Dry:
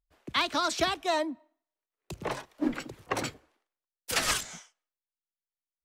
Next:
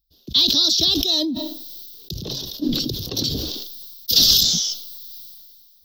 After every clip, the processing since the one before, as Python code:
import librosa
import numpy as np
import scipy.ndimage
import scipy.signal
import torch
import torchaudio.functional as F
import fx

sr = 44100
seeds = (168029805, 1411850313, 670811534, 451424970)

y = fx.curve_eq(x, sr, hz=(210.0, 430.0, 840.0, 2200.0, 3600.0, 5400.0, 9200.0, 14000.0), db=(0, -7, -22, -27, 10, 11, -25, 14))
y = fx.sustainer(y, sr, db_per_s=28.0)
y = y * 10.0 ** (8.0 / 20.0)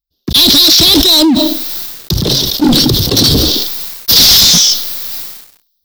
y = fx.leveller(x, sr, passes=5)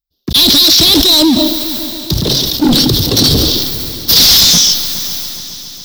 y = fx.echo_heads(x, sr, ms=138, heads='first and third', feedback_pct=69, wet_db=-17)
y = y * 10.0 ** (-1.0 / 20.0)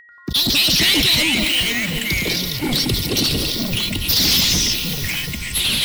y = x + 10.0 ** (-28.0 / 20.0) * np.sin(2.0 * np.pi * 1900.0 * np.arange(len(x)) / sr)
y = fx.hpss(y, sr, part='harmonic', gain_db=-10)
y = fx.echo_pitch(y, sr, ms=90, semitones=-5, count=2, db_per_echo=-3.0)
y = y * 10.0 ** (-7.0 / 20.0)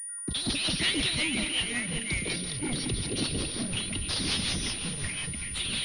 y = fx.rotary(x, sr, hz=5.5)
y = fx.pwm(y, sr, carrier_hz=9500.0)
y = y * 10.0 ** (-8.5 / 20.0)